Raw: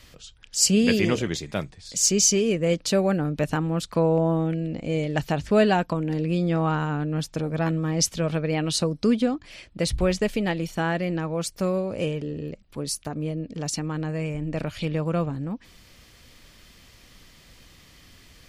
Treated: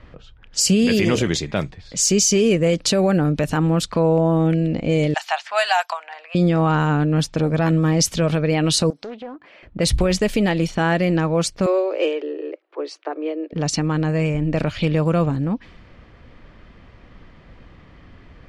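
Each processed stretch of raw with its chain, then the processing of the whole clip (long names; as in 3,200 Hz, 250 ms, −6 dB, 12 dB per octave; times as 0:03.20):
0:05.14–0:06.35: elliptic high-pass filter 720 Hz, stop band 50 dB + high-shelf EQ 5,700 Hz +10 dB
0:08.90–0:09.63: high-pass filter 370 Hz + downward compressor 2.5 to 1, threshold −45 dBFS + highs frequency-modulated by the lows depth 0.33 ms
0:11.66–0:13.53: Butterworth high-pass 310 Hz 96 dB per octave + high-frequency loss of the air 87 metres
whole clip: low-pass that shuts in the quiet parts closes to 1,300 Hz, open at −21 dBFS; brickwall limiter −17 dBFS; level +8.5 dB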